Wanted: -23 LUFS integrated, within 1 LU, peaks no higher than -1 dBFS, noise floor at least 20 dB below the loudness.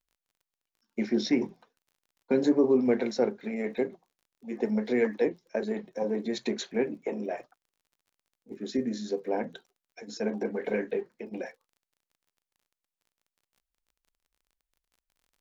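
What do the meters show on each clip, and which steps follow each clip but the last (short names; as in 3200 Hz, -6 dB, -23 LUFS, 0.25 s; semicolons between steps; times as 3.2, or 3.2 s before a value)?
ticks 29/s; loudness -30.0 LUFS; peak -12.5 dBFS; loudness target -23.0 LUFS
-> de-click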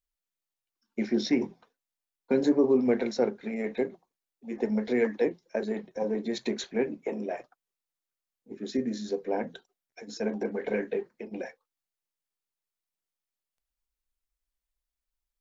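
ticks 0.13/s; loudness -30.0 LUFS; peak -12.5 dBFS; loudness target -23.0 LUFS
-> gain +7 dB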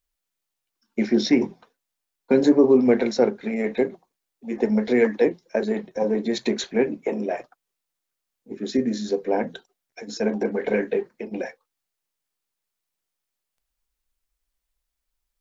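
loudness -23.0 LUFS; peak -5.5 dBFS; noise floor -83 dBFS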